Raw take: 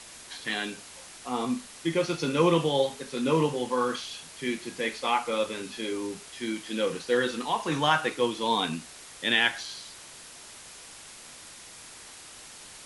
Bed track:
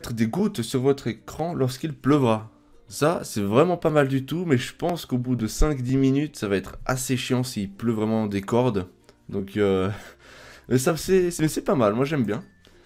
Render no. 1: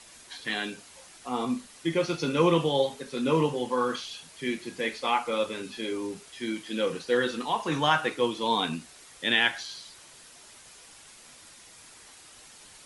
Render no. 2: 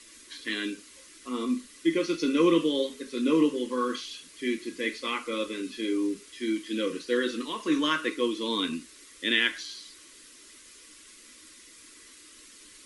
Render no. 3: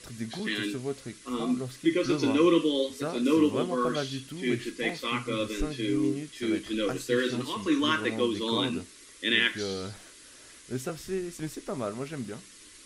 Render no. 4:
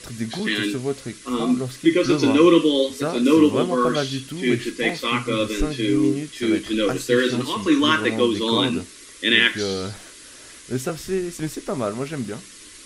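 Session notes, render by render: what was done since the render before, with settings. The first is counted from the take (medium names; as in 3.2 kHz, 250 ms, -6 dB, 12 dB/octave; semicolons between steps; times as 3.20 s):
noise reduction 6 dB, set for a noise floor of -47 dBFS
static phaser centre 320 Hz, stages 4; small resonant body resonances 300/1100/2000 Hz, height 8 dB
add bed track -13 dB
trim +8 dB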